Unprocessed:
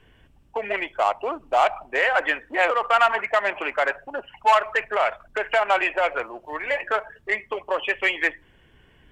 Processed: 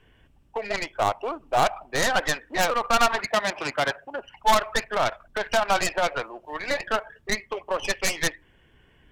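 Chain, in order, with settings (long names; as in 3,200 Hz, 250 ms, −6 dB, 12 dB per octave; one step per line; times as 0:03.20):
stylus tracing distortion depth 0.34 ms
0:03.20–0:04.19: high-pass filter 78 Hz 12 dB per octave
level −2.5 dB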